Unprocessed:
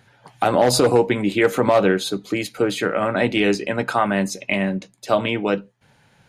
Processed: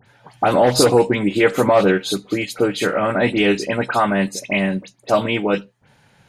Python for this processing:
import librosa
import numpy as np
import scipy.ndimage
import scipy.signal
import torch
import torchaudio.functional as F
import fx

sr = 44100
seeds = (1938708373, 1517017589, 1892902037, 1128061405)

y = fx.dispersion(x, sr, late='highs', ms=66.0, hz=2800.0)
y = y * librosa.db_to_amplitude(2.0)